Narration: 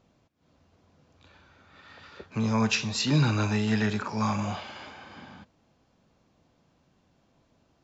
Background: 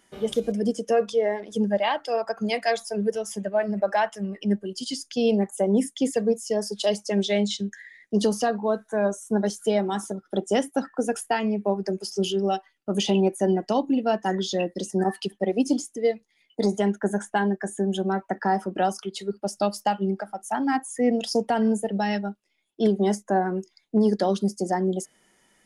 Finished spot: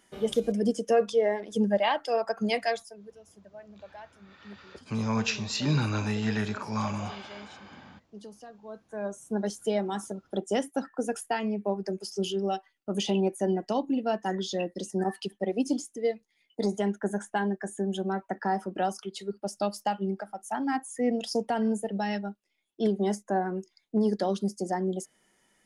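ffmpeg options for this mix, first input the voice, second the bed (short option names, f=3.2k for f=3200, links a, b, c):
-filter_complex "[0:a]adelay=2550,volume=-3dB[a];[1:a]volume=17dB,afade=t=out:st=2.56:d=0.41:silence=0.0794328,afade=t=in:st=8.61:d=0.92:silence=0.11885[b];[a][b]amix=inputs=2:normalize=0"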